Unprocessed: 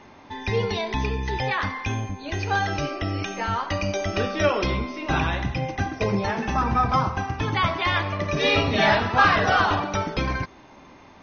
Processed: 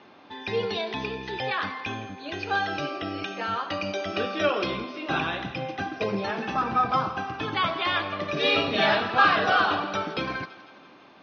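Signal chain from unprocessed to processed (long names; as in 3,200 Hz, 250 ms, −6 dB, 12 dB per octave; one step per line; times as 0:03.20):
loudspeaker in its box 240–4,500 Hz, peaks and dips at 250 Hz −4 dB, 410 Hz −3 dB, 590 Hz −3 dB, 930 Hz −8 dB, 2,000 Hz −8 dB
feedback echo with a high-pass in the loop 166 ms, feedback 60%, high-pass 420 Hz, level −16.5 dB
level +1 dB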